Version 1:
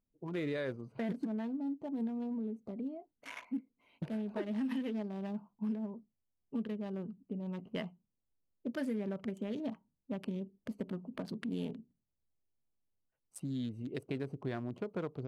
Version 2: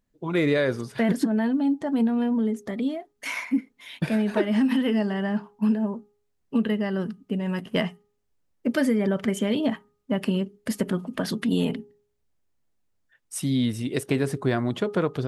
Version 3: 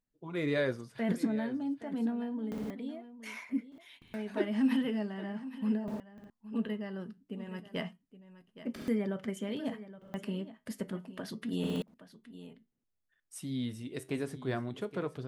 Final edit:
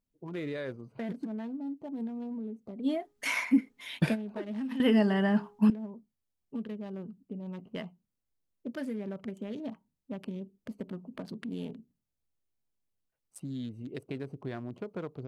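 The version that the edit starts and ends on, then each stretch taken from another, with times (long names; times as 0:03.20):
1
0:02.86–0:04.13: punch in from 2, crossfade 0.06 s
0:04.80–0:05.70: punch in from 2
not used: 3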